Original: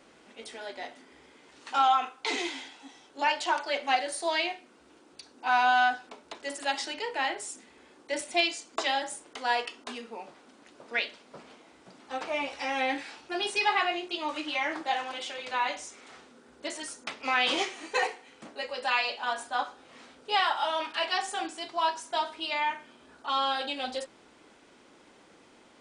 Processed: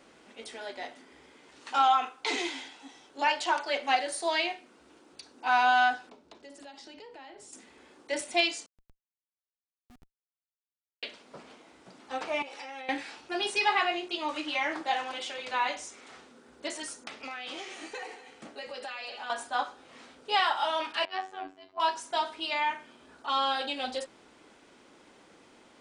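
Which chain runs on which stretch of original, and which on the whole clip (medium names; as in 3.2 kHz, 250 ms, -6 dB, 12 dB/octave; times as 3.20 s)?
6.10–7.53 s: FFT filter 180 Hz 0 dB, 1.9 kHz -12 dB, 4.7 kHz -8 dB, 9.9 kHz -15 dB + compression 5:1, threshold -45 dBFS
8.66–11.03 s: inverse Chebyshev low-pass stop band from 1.5 kHz, stop band 80 dB + Schmitt trigger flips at -43.5 dBFS
12.42–12.89 s: high-pass 170 Hz 24 dB/octave + comb 2.3 ms, depth 33% + compression 8:1, threshold -39 dBFS
17.07–19.30 s: band-stop 1 kHz, Q 11 + compression 8:1, threshold -36 dBFS + delay 239 ms -14.5 dB
21.05–21.80 s: robot voice 94.5 Hz + tape spacing loss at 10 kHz 31 dB + three bands expanded up and down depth 100%
whole clip: none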